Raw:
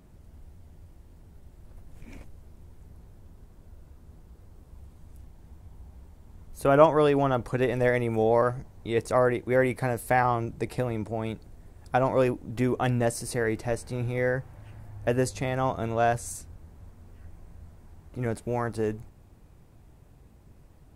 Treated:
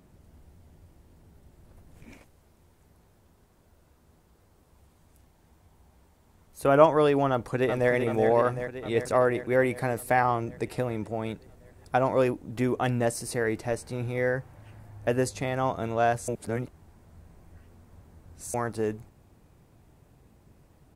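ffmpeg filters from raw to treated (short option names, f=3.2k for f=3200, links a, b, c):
-filter_complex "[0:a]asettb=1/sr,asplit=3[a][b][c];[a]atrim=end=2.134[d];[b]atrim=start=2.13:end=6.63,asetpts=PTS-STARTPTS,afade=t=in:d=0.004:c=qsin,afade=t=out:st=4.496:d=0.004:c=qsin,lowshelf=f=410:g=-8[e];[c]atrim=start=6.626[f];[d][e]acrossfade=d=0.004:c1=hsin:c2=qsin[g];[g][f]acrossfade=d=0.004:c1=qsin:c2=hsin,asplit=2[h][i];[i]afade=t=in:st=7.3:d=0.01,afade=t=out:st=7.91:d=0.01,aecho=0:1:380|760|1140|1520|1900|2280|2660|3040|3420|3800|4180:0.446684|0.312679|0.218875|0.153212|0.107249|0.0750741|0.0525519|0.0367863|0.0257504|0.0180253|0.0126177[j];[h][j]amix=inputs=2:normalize=0,asplit=3[k][l][m];[k]atrim=end=16.282[n];[l]atrim=start=16.278:end=18.542,asetpts=PTS-STARTPTS,areverse[o];[m]atrim=start=18.538[p];[n][o]acrossfade=d=0.004:c1=hsin:c2=hsin[q];[q][p]acrossfade=d=0.004:c1=hsin:c2=hsin,lowshelf=f=63:g=-11"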